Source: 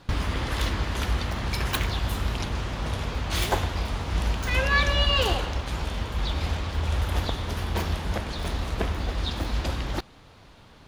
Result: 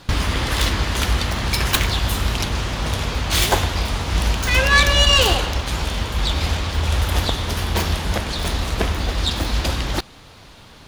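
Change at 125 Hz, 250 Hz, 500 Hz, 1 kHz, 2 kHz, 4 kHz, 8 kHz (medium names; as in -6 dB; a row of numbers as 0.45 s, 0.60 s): +6.0 dB, +6.0 dB, +6.5 dB, +7.0 dB, +8.5 dB, +10.0 dB, +13.0 dB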